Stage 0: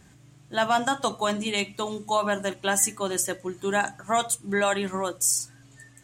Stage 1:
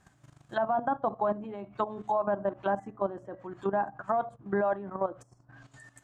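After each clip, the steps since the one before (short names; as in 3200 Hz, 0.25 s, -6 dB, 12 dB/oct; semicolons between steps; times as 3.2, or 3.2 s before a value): treble ducked by the level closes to 680 Hz, closed at -24.5 dBFS; band shelf 1000 Hz +8 dB; level quantiser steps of 13 dB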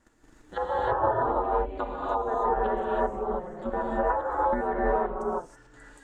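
ring modulator 160 Hz; non-linear reverb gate 0.35 s rising, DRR -6 dB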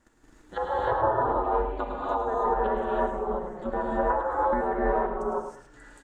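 feedback echo 0.106 s, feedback 25%, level -8.5 dB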